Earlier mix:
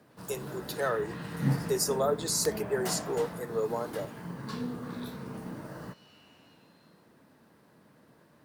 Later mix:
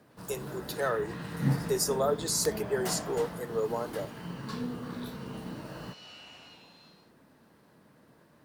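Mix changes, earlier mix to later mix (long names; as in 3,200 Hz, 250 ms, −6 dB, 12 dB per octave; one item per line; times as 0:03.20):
second sound +11.5 dB
master: remove high-pass filter 64 Hz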